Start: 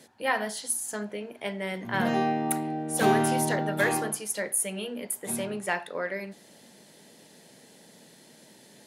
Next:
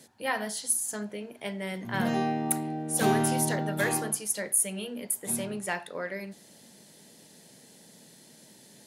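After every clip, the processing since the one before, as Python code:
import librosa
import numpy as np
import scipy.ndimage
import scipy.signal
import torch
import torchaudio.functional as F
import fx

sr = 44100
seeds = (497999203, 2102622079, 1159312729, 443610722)

y = fx.bass_treble(x, sr, bass_db=5, treble_db=6)
y = y * 10.0 ** (-3.5 / 20.0)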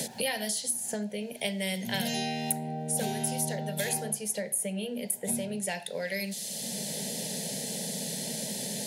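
y = fx.fixed_phaser(x, sr, hz=320.0, stages=6)
y = fx.band_squash(y, sr, depth_pct=100)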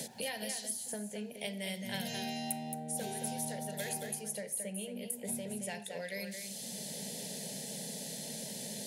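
y = x + 10.0 ** (-7.0 / 20.0) * np.pad(x, (int(222 * sr / 1000.0), 0))[:len(x)]
y = y * 10.0 ** (-8.0 / 20.0)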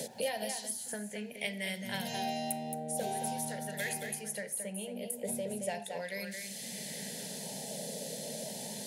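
y = fx.bell_lfo(x, sr, hz=0.37, low_hz=520.0, high_hz=2100.0, db=9)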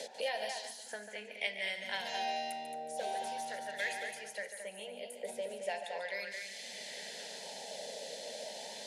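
y = fx.bandpass_edges(x, sr, low_hz=590.0, high_hz=4900.0)
y = y + 10.0 ** (-10.0 / 20.0) * np.pad(y, (int(144 * sr / 1000.0), 0))[:len(y)]
y = y * 10.0 ** (1.5 / 20.0)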